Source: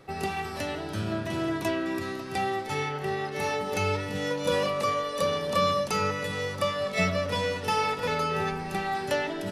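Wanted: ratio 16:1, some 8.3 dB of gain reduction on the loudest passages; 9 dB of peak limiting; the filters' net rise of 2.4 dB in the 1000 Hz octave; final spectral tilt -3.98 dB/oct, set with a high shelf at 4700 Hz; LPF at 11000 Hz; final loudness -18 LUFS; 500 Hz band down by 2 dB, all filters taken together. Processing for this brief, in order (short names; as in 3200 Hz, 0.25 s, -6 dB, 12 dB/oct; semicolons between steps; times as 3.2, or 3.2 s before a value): LPF 11000 Hz; bell 500 Hz -3.5 dB; bell 1000 Hz +4.5 dB; high shelf 4700 Hz -8.5 dB; compressor 16:1, threshold -27 dBFS; gain +16 dB; limiter -9.5 dBFS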